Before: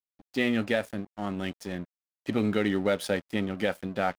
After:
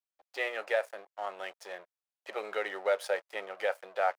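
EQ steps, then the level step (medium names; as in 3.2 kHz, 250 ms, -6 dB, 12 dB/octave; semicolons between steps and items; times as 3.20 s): inverse Chebyshev high-pass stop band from 270 Hz, stop band 40 dB; dynamic bell 3.4 kHz, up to -5 dB, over -49 dBFS, Q 2.3; tilt EQ -2 dB/octave; 0.0 dB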